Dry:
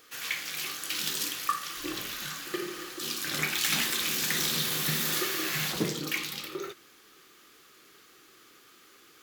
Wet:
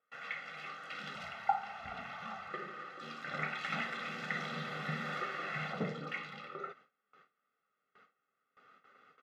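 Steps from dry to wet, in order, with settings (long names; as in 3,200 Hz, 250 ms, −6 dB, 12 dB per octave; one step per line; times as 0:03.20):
0:01.15–0:02.50: frequency shifter −370 Hz
Chebyshev band-pass filter 200–1,600 Hz, order 2
comb filter 1.5 ms, depth 90%
noise gate with hold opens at −48 dBFS
level −4 dB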